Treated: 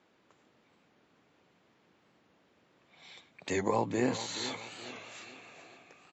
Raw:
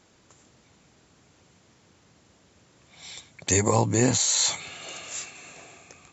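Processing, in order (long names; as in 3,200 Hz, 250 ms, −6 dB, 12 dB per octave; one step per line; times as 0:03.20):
three-way crossover with the lows and the highs turned down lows −15 dB, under 170 Hz, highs −20 dB, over 3,900 Hz
repeating echo 426 ms, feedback 42%, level −13.5 dB
wow of a warped record 45 rpm, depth 100 cents
level −6 dB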